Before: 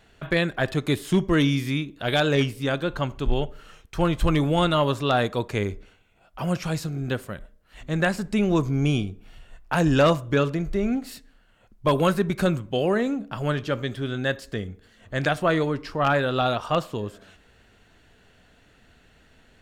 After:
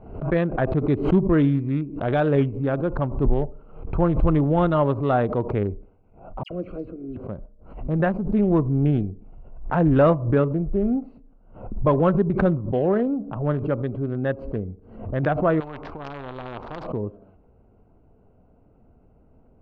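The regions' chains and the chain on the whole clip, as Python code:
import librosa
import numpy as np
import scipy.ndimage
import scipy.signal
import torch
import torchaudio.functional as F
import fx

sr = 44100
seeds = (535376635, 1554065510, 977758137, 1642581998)

y = fx.chain(x, sr, fx.fixed_phaser(hz=360.0, stages=4),
    fx.dispersion(late='lows', ms=75.0, hz=2500.0), at=(6.43, 7.17))
y = fx.chain(y, sr, fx.air_absorb(metres=120.0),
    fx.spectral_comp(ratio=10.0), at=(15.6, 16.87))
y = fx.wiener(y, sr, points=25)
y = scipy.signal.sosfilt(scipy.signal.butter(2, 1200.0, 'lowpass', fs=sr, output='sos'), y)
y = fx.pre_swell(y, sr, db_per_s=86.0)
y = y * 10.0 ** (2.5 / 20.0)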